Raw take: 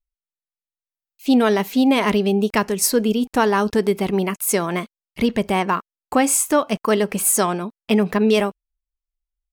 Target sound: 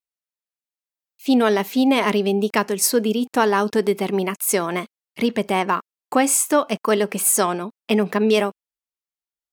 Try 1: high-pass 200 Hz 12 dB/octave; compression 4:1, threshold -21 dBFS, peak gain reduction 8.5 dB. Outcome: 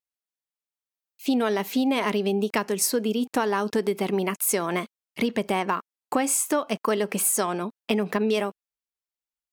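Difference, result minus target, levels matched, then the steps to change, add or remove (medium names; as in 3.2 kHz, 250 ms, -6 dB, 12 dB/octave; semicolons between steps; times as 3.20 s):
compression: peak gain reduction +8.5 dB
remove: compression 4:1, threshold -21 dBFS, peak gain reduction 8.5 dB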